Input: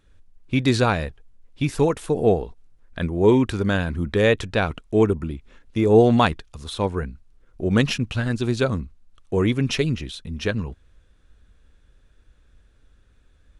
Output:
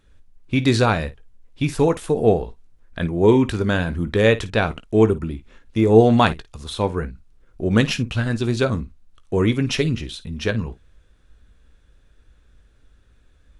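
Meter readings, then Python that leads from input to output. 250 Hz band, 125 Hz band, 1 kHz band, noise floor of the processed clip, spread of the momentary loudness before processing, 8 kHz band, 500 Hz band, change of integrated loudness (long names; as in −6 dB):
+2.0 dB, +2.0 dB, +2.0 dB, −56 dBFS, 14 LU, +2.0 dB, +1.5 dB, +2.0 dB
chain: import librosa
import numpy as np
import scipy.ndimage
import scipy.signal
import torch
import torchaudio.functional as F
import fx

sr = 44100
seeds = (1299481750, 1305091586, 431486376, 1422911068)

y = fx.room_early_taps(x, sr, ms=(18, 54), db=(-13.0, -16.5))
y = y * 10.0 ** (1.5 / 20.0)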